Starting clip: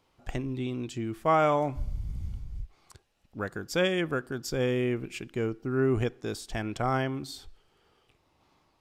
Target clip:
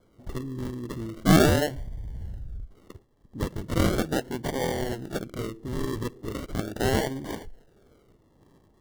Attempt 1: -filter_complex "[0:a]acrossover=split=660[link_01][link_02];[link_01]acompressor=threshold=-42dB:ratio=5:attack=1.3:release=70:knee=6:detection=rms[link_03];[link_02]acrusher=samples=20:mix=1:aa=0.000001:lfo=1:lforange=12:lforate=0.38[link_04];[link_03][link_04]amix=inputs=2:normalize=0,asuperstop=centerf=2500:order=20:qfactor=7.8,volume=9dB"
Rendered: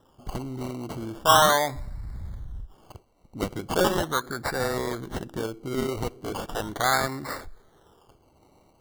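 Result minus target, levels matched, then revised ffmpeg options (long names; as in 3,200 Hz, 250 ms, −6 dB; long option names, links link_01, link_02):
sample-and-hold swept by an LFO: distortion −32 dB
-filter_complex "[0:a]acrossover=split=660[link_01][link_02];[link_01]acompressor=threshold=-42dB:ratio=5:attack=1.3:release=70:knee=6:detection=rms[link_03];[link_02]acrusher=samples=47:mix=1:aa=0.000001:lfo=1:lforange=28.2:lforate=0.38[link_04];[link_03][link_04]amix=inputs=2:normalize=0,asuperstop=centerf=2500:order=20:qfactor=7.8,volume=9dB"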